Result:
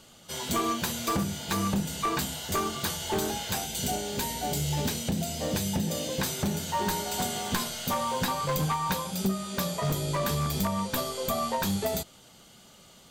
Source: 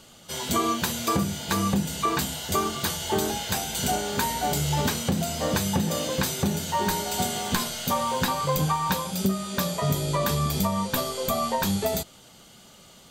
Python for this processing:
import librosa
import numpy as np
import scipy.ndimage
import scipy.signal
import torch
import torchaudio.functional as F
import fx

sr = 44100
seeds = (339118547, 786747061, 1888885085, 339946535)

y = np.minimum(x, 2.0 * 10.0 ** (-19.0 / 20.0) - x)
y = fx.peak_eq(y, sr, hz=1200.0, db=-8.5, octaves=1.0, at=(3.66, 6.2))
y = y * 10.0 ** (-3.0 / 20.0)